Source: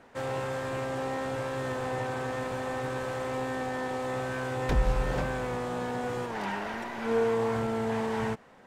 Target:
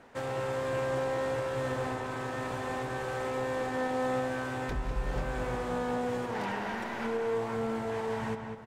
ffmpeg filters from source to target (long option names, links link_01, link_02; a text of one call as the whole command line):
ffmpeg -i in.wav -filter_complex "[0:a]alimiter=level_in=1.5dB:limit=-24dB:level=0:latency=1:release=384,volume=-1.5dB,asplit=2[link_01][link_02];[link_02]adelay=199,lowpass=frequency=3000:poles=1,volume=-5.5dB,asplit=2[link_03][link_04];[link_04]adelay=199,lowpass=frequency=3000:poles=1,volume=0.39,asplit=2[link_05][link_06];[link_06]adelay=199,lowpass=frequency=3000:poles=1,volume=0.39,asplit=2[link_07][link_08];[link_08]adelay=199,lowpass=frequency=3000:poles=1,volume=0.39,asplit=2[link_09][link_10];[link_10]adelay=199,lowpass=frequency=3000:poles=1,volume=0.39[link_11];[link_03][link_05][link_07][link_09][link_11]amix=inputs=5:normalize=0[link_12];[link_01][link_12]amix=inputs=2:normalize=0" out.wav